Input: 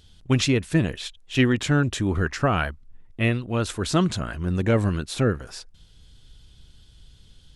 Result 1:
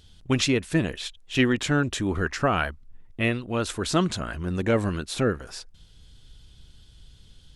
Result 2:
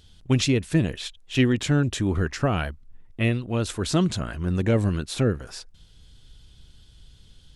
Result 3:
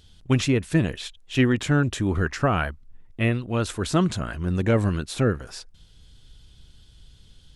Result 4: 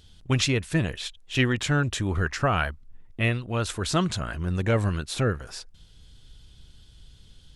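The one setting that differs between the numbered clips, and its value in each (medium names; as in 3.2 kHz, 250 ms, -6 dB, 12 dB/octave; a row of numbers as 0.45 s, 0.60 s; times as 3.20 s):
dynamic bell, frequency: 110 Hz, 1.3 kHz, 4.4 kHz, 270 Hz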